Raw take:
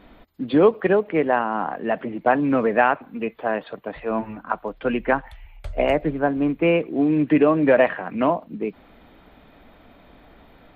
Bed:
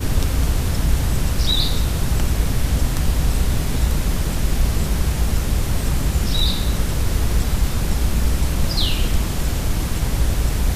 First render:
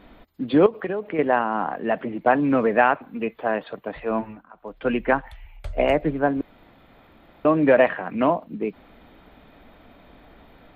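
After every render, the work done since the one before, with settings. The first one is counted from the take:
0:00.66–0:01.19: downward compressor, threshold −23 dBFS
0:04.16–0:04.88: duck −23 dB, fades 0.35 s
0:06.41–0:07.45: fill with room tone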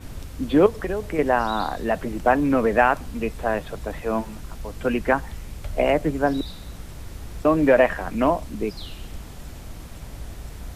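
mix in bed −17.5 dB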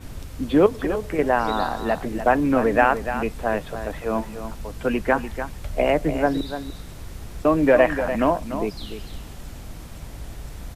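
single-tap delay 294 ms −10 dB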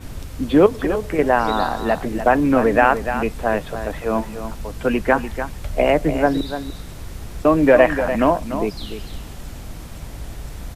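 level +3.5 dB
brickwall limiter −1 dBFS, peak gain reduction 2 dB

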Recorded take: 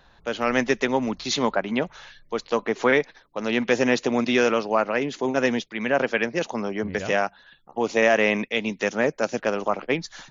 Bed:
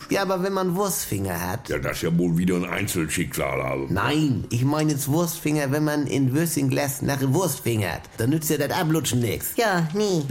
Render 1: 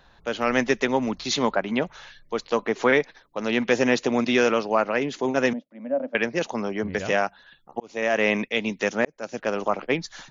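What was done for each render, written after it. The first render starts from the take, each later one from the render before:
0:05.53–0:06.15: pair of resonant band-passes 390 Hz, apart 1.1 octaves
0:07.80–0:08.30: fade in
0:09.05–0:09.59: fade in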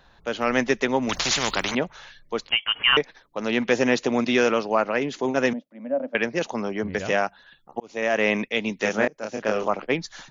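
0:01.09–0:01.75: every bin compressed towards the loudest bin 4 to 1
0:02.49–0:02.97: voice inversion scrambler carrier 3,300 Hz
0:08.81–0:09.68: double-tracking delay 28 ms −2.5 dB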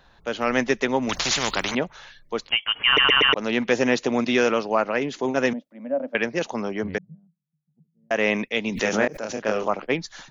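0:02.86: stutter in place 0.12 s, 4 plays
0:06.98–0:08.11: flat-topped band-pass 160 Hz, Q 6.3
0:08.72–0:09.42: background raised ahead of every attack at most 76 dB per second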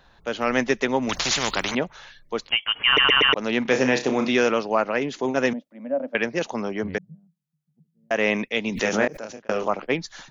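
0:03.62–0:04.29: flutter between parallel walls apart 5.3 metres, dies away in 0.27 s
0:09.09–0:09.49: fade out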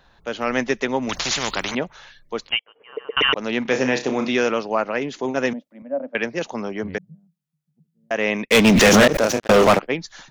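0:02.59–0:03.17: resonant band-pass 470 Hz, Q 5.8
0:05.82–0:06.52: multiband upward and downward expander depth 40%
0:08.45–0:09.79: leveller curve on the samples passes 5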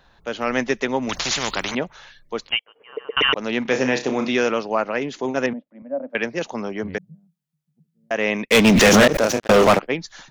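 0:05.46–0:06.10: high-frequency loss of the air 400 metres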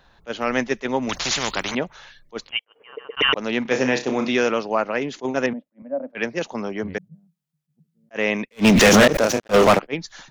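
level that may rise only so fast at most 460 dB per second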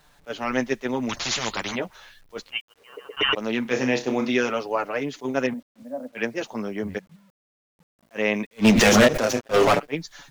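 flanger 0.2 Hz, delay 6.6 ms, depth 4.2 ms, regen −7%
bit-depth reduction 10 bits, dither none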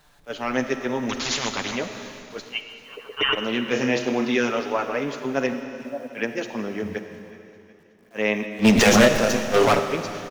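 repeating echo 369 ms, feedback 55%, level −21 dB
comb and all-pass reverb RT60 2.7 s, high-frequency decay 1×, pre-delay 10 ms, DRR 7.5 dB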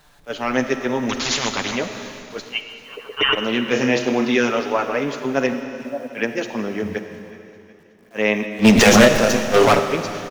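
level +4 dB
brickwall limiter −1 dBFS, peak gain reduction 0.5 dB

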